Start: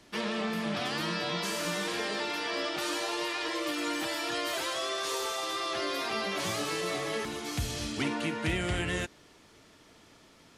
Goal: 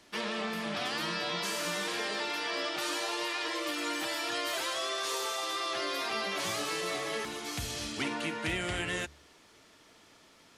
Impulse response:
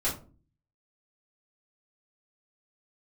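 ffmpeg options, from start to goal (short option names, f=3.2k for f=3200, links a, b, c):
-af "lowshelf=f=360:g=-7,bandreject=f=72.56:t=h:w=4,bandreject=f=145.12:t=h:w=4"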